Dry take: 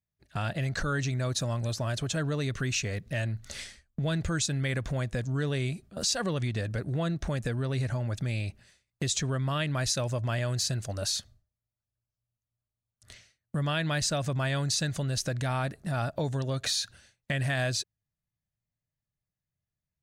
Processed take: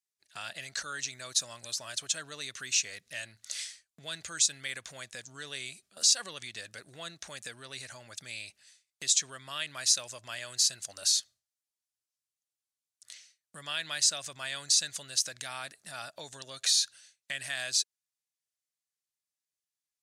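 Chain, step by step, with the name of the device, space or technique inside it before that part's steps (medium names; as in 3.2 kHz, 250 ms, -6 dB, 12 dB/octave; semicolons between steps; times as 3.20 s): piezo pickup straight into a mixer (low-pass 8.6 kHz 12 dB/octave; differentiator); trim +8 dB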